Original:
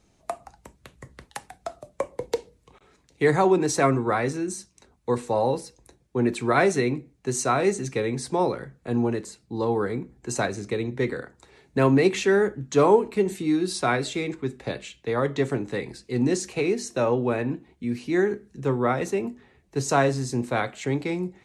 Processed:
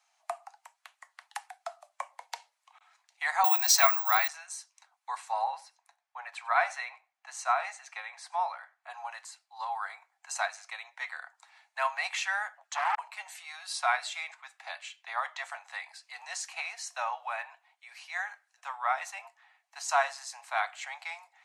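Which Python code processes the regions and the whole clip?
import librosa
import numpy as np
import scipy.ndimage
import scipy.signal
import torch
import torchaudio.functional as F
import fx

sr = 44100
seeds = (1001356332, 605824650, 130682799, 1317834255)

y = fx.chain(x, sr, fx.resample_bad(factor=2, down='none', up='zero_stuff'),
    fx.peak_eq(hz=4700.0, db=14.0, octaves=1.7), at=(3.44, 4.28))
y = fx.chain(y, sr, fx.high_shelf(hz=4000.0, db=-10.5),
    fx.echo_single(ms=94, db=-21.5), at=(5.44, 8.9))
y = fx.chain(y, sr, fx.highpass(hz=49.0, slope=24),
    fx.clip_hard(threshold_db=-15.0),
    fx.transformer_sat(knee_hz=840.0), at=(12.57, 12.99))
y = scipy.signal.sosfilt(scipy.signal.butter(12, 700.0, 'highpass', fs=sr, output='sos'), y)
y = fx.high_shelf(y, sr, hz=6200.0, db=-5.5)
y = fx.notch(y, sr, hz=3700.0, q=27.0)
y = y * 10.0 ** (-1.5 / 20.0)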